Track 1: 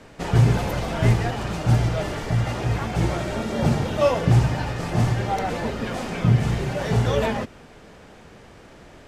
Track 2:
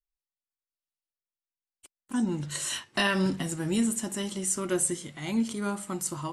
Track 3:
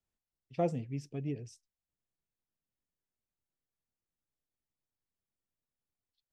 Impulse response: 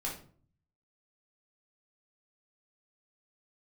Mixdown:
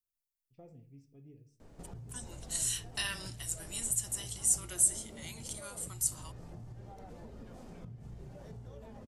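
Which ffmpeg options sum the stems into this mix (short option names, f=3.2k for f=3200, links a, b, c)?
-filter_complex "[0:a]acompressor=threshold=-24dB:ratio=6,adelay=1600,volume=-10.5dB[a];[1:a]aderivative,volume=0.5dB[b];[2:a]alimiter=limit=-23dB:level=0:latency=1:release=149,volume=-20dB,asplit=2[c][d];[d]volume=-10dB[e];[a][c]amix=inputs=2:normalize=0,equalizer=f=2.3k:w=0.53:g=-11,acompressor=threshold=-51dB:ratio=3,volume=0dB[f];[3:a]atrim=start_sample=2205[g];[e][g]afir=irnorm=-1:irlink=0[h];[b][f][h]amix=inputs=3:normalize=0,lowshelf=f=61:g=11"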